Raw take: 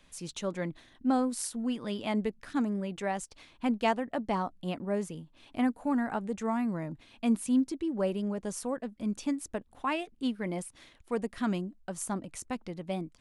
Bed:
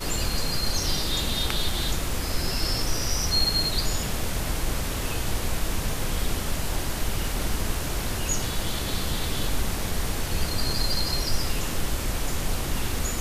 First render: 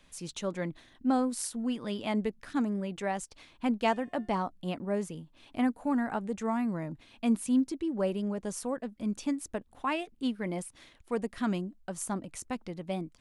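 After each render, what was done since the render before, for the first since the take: 3.83–4.44 s: de-hum 356 Hz, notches 39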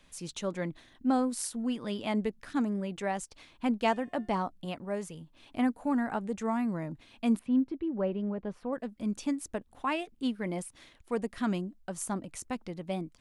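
4.65–5.21 s: peaking EQ 270 Hz -7 dB 1.3 oct; 7.39–8.73 s: distance through air 410 m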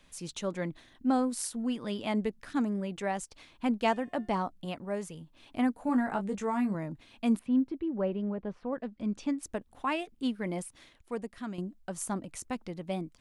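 5.87–6.75 s: doubling 20 ms -6 dB; 8.36–9.43 s: distance through air 94 m; 10.65–11.58 s: fade out, to -10.5 dB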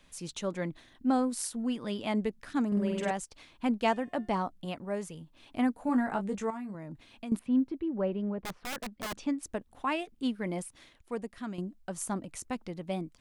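2.67–3.11 s: flutter echo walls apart 8.4 m, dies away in 1.4 s; 6.50–7.32 s: compression 4:1, threshold -38 dBFS; 8.42–9.19 s: integer overflow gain 31 dB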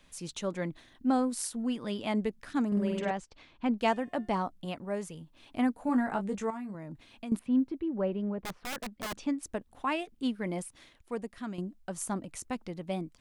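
2.99–3.78 s: distance through air 120 m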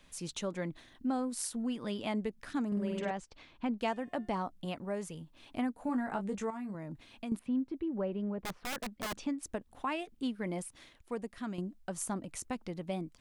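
compression 2:1, threshold -34 dBFS, peak gain reduction 7 dB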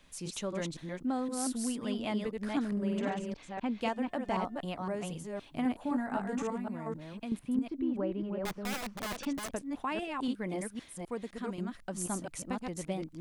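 chunks repeated in reverse 257 ms, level -3 dB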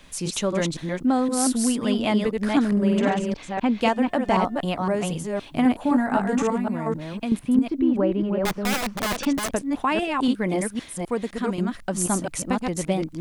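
trim +12 dB

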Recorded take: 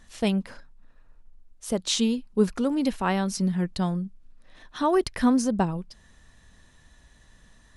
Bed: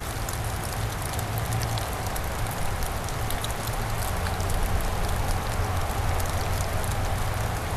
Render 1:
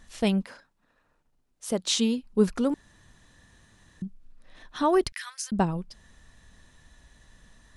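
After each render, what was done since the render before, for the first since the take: 0.43–2.23 s: high-pass 400 Hz -> 110 Hz 6 dB/octave; 2.74–4.02 s: room tone; 5.12–5.52 s: inverse Chebyshev high-pass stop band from 270 Hz, stop band 80 dB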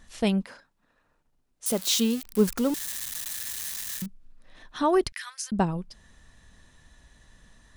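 1.66–4.06 s: zero-crossing glitches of -24 dBFS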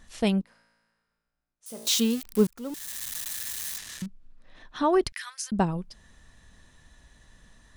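0.41–1.87 s: feedback comb 56 Hz, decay 1.7 s, mix 90%; 2.47–3.10 s: fade in; 3.78–5.06 s: distance through air 54 m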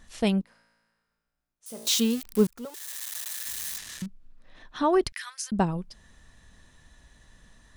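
2.65–3.46 s: elliptic high-pass 400 Hz, stop band 60 dB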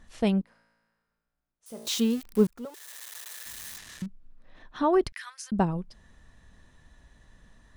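treble shelf 2.6 kHz -8 dB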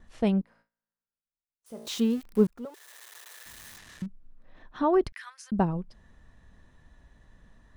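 gate with hold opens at -53 dBFS; treble shelf 2.7 kHz -8 dB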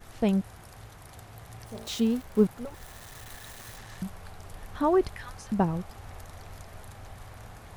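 add bed -18.5 dB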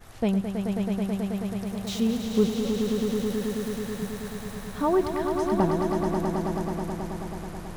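echo with a slow build-up 108 ms, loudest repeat 5, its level -7 dB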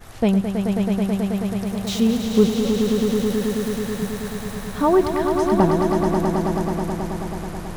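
trim +6.5 dB

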